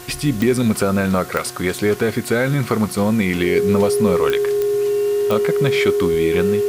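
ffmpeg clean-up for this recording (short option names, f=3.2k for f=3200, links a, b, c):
-af "adeclick=t=4,bandreject=f=360:t=h:w=4,bandreject=f=720:t=h:w=4,bandreject=f=1.08k:t=h:w=4,bandreject=f=1.44k:t=h:w=4,bandreject=f=1.8k:t=h:w=4,bandreject=f=410:w=30,afwtdn=0.011"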